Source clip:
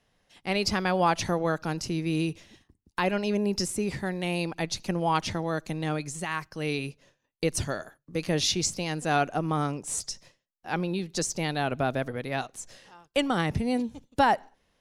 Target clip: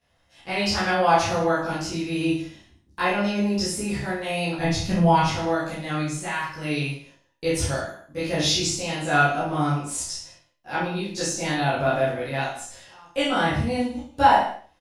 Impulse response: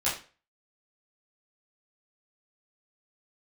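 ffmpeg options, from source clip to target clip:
-filter_complex "[0:a]asettb=1/sr,asplit=3[a][b][c];[a]atrim=end=4.574[d];[b]atrim=start=4.57:end=5.24,asetpts=PTS-STARTPTS,afade=t=in:d=0.004:c=qsin,afade=t=out:st=0.666:d=0.004:c=qsin,bass=f=250:g=13,treble=f=4k:g=0[e];[c]atrim=start=5.236[f];[d][e]acrossfade=d=0.004:c1=hsin:c2=qsin[g];[g][f]acrossfade=d=0.004:c1=qsin:c2=hsin,aecho=1:1:30|64.5|104.2|149.8|202.3:0.631|0.398|0.251|0.158|0.1[h];[1:a]atrim=start_sample=2205[i];[h][i]afir=irnorm=-1:irlink=0,volume=-6.5dB"

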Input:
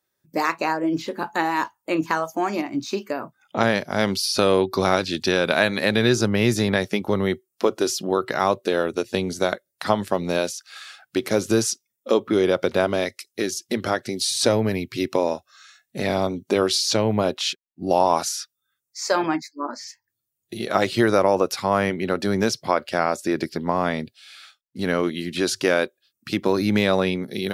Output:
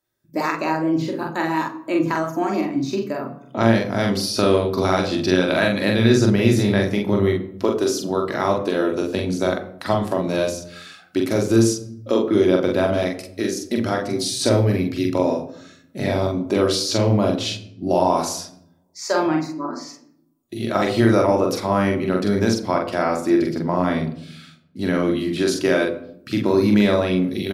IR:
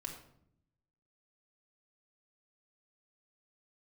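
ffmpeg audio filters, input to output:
-filter_complex "[0:a]asplit=2[a][b];[b]adelay=44,volume=-3.5dB[c];[a][c]amix=inputs=2:normalize=0,asplit=2[d][e];[1:a]atrim=start_sample=2205,lowshelf=f=480:g=11.5[f];[e][f]afir=irnorm=-1:irlink=0,volume=-0.5dB[g];[d][g]amix=inputs=2:normalize=0,volume=-7dB"

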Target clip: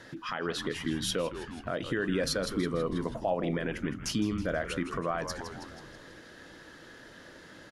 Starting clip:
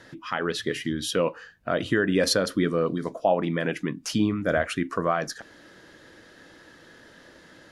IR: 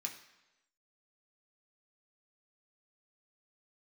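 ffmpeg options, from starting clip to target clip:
-filter_complex "[0:a]asplit=2[a][b];[b]asplit=6[c][d][e][f][g][h];[c]adelay=162,afreqshift=-130,volume=-12dB[i];[d]adelay=324,afreqshift=-260,volume=-17dB[j];[e]adelay=486,afreqshift=-390,volume=-22.1dB[k];[f]adelay=648,afreqshift=-520,volume=-27.1dB[l];[g]adelay=810,afreqshift=-650,volume=-32.1dB[m];[h]adelay=972,afreqshift=-780,volume=-37.2dB[n];[i][j][k][l][m][n]amix=inputs=6:normalize=0[o];[a][o]amix=inputs=2:normalize=0,alimiter=limit=-19.5dB:level=0:latency=1:release=480"

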